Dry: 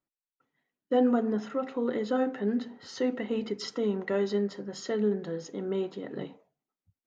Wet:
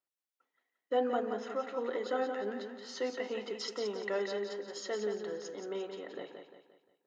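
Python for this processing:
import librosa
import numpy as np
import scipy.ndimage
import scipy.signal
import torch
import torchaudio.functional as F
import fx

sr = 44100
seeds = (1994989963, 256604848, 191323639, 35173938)

p1 = scipy.signal.sosfilt(scipy.signal.butter(2, 480.0, 'highpass', fs=sr, output='sos'), x)
p2 = p1 + fx.echo_feedback(p1, sr, ms=175, feedback_pct=42, wet_db=-6.5, dry=0)
y = p2 * 10.0 ** (-2.0 / 20.0)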